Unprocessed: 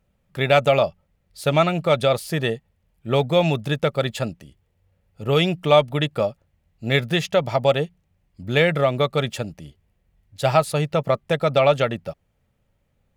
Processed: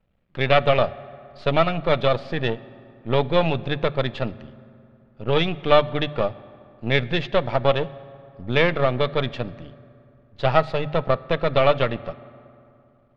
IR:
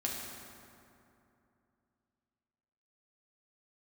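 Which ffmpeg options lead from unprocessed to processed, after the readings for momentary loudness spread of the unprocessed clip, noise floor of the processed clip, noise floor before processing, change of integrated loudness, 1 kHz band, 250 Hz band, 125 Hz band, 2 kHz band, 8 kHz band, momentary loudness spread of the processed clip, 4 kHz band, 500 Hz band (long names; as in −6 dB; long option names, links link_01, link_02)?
14 LU, −57 dBFS, −69 dBFS, −1.5 dB, 0.0 dB, −2.0 dB, −2.0 dB, −0.5 dB, below −15 dB, 15 LU, −1.5 dB, −1.5 dB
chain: -filter_complex "[0:a]aeval=exprs='if(lt(val(0),0),0.251*val(0),val(0))':channel_layout=same,lowpass=frequency=4000:width=0.5412,lowpass=frequency=4000:width=1.3066,bandreject=frequency=50:width_type=h:width=6,bandreject=frequency=100:width_type=h:width=6,bandreject=frequency=150:width_type=h:width=6,asplit=2[link_01][link_02];[1:a]atrim=start_sample=2205,lowpass=5200[link_03];[link_02][link_03]afir=irnorm=-1:irlink=0,volume=-18.5dB[link_04];[link_01][link_04]amix=inputs=2:normalize=0,volume=1dB"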